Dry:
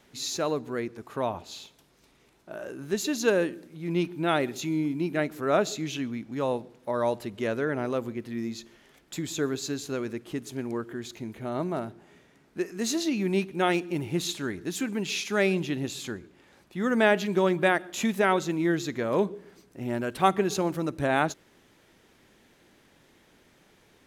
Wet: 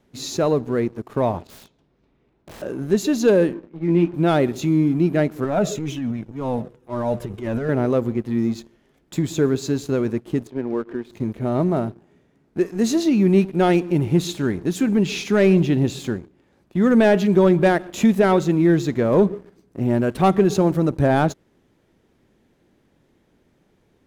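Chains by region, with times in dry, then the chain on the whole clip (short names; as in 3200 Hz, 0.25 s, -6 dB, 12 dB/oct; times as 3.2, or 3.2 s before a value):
1.47–2.62 low-pass opened by the level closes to 2800 Hz, open at -37 dBFS + wrapped overs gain 39 dB
3.53–4.14 Chebyshev band-pass 240–2200 Hz + doubler 18 ms -4.5 dB
5.44–7.69 bell 4400 Hz -10 dB 0.22 oct + transient shaper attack -9 dB, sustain +7 dB + cascading flanger falling 2 Hz
10.47–11.11 HPF 280 Hz + air absorption 270 m
14.87–15.99 G.711 law mismatch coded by mu + high shelf 9100 Hz -5.5 dB
whole clip: dynamic EQ 300 Hz, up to -3 dB, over -38 dBFS, Q 2.4; sample leveller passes 2; tilt shelf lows +6.5 dB, about 760 Hz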